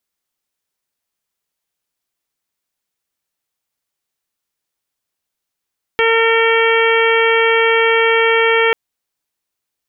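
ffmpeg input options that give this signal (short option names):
-f lavfi -i "aevalsrc='0.211*sin(2*PI*455*t)+0.0944*sin(2*PI*910*t)+0.1*sin(2*PI*1365*t)+0.126*sin(2*PI*1820*t)+0.133*sin(2*PI*2275*t)+0.0668*sin(2*PI*2730*t)+0.0668*sin(2*PI*3185*t)':d=2.74:s=44100"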